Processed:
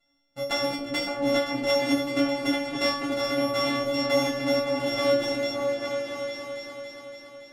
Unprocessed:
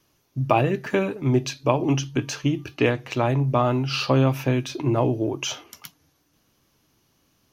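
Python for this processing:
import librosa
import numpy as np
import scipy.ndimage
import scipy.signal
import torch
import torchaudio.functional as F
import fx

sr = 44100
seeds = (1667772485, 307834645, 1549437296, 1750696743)

p1 = np.r_[np.sort(x[:len(x) // 64 * 64].reshape(-1, 64), axis=1).ravel(), x[len(x) // 64 * 64:]]
p2 = fx.rider(p1, sr, range_db=4, speed_s=0.5)
p3 = p1 + (p2 * 10.0 ** (-1.0 / 20.0))
p4 = scipy.signal.sosfilt(scipy.signal.butter(2, 11000.0, 'lowpass', fs=sr, output='sos'), p3)
p5 = fx.stiff_resonator(p4, sr, f0_hz=280.0, decay_s=0.53, stiffness=0.002)
p6 = fx.echo_opening(p5, sr, ms=282, hz=400, octaves=2, feedback_pct=70, wet_db=0)
y = p6 * 10.0 ** (6.0 / 20.0)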